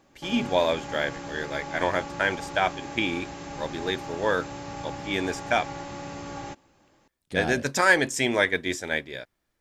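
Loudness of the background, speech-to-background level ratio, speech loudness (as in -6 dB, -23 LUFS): -37.5 LUFS, 11.0 dB, -26.5 LUFS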